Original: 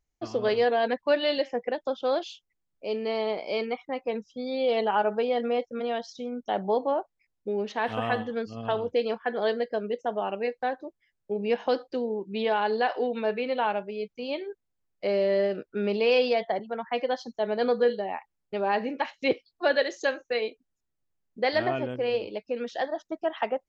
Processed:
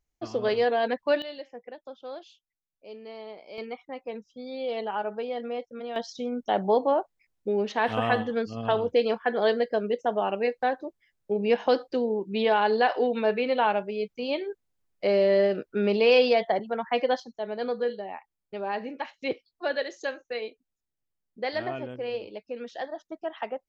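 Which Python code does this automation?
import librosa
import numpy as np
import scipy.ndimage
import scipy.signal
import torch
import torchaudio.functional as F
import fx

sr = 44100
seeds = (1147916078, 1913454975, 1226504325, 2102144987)

y = fx.gain(x, sr, db=fx.steps((0.0, -0.5), (1.22, -13.0), (3.58, -6.0), (5.96, 3.0), (17.2, -5.0)))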